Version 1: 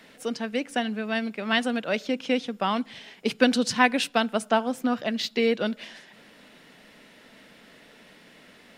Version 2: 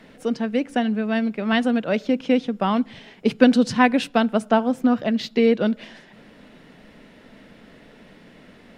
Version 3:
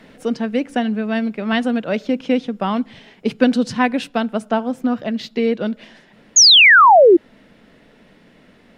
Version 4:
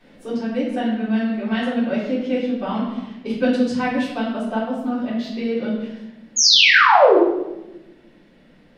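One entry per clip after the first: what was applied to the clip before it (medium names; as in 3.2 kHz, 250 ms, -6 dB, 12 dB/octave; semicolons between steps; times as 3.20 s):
tilt EQ -2.5 dB/octave; trim +2.5 dB
gain riding within 3 dB 2 s; painted sound fall, 6.36–7.17 s, 320–6900 Hz -8 dBFS
reverberation RT60 1.0 s, pre-delay 3 ms, DRR -10 dB; trim -14.5 dB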